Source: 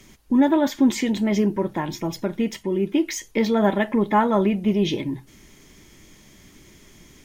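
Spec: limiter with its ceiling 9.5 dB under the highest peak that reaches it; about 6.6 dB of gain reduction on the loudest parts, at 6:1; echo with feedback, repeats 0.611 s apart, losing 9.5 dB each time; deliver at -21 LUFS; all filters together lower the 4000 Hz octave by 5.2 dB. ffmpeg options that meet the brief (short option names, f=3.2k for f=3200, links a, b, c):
-af "equalizer=f=4k:t=o:g=-7,acompressor=threshold=-20dB:ratio=6,alimiter=limit=-21dB:level=0:latency=1,aecho=1:1:611|1222|1833|2444:0.335|0.111|0.0365|0.012,volume=9dB"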